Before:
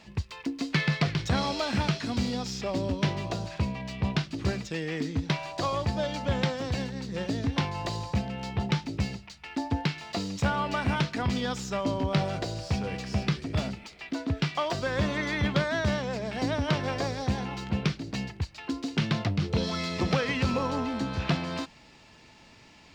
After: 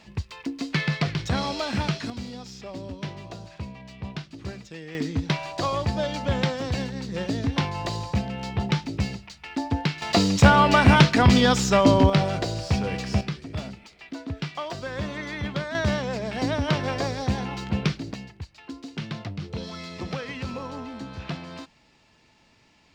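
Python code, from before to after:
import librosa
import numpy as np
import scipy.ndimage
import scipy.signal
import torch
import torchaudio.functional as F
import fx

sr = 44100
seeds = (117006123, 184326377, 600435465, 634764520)

y = fx.gain(x, sr, db=fx.steps((0.0, 1.0), (2.1, -7.0), (4.95, 3.0), (10.02, 12.0), (12.1, 5.0), (13.21, -3.5), (15.75, 3.0), (18.14, -6.0)))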